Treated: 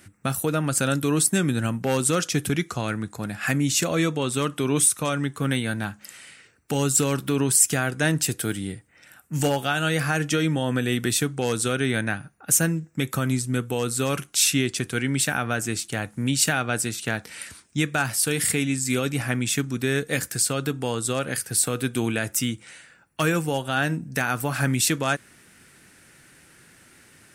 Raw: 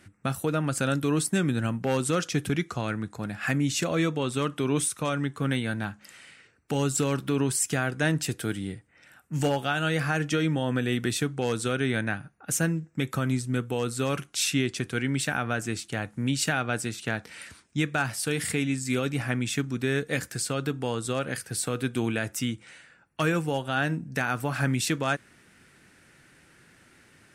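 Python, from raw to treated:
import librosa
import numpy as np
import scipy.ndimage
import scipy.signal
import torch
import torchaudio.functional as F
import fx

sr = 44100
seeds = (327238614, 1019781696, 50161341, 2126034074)

y = fx.high_shelf(x, sr, hz=7200.0, db=11.5)
y = y * 10.0 ** (2.5 / 20.0)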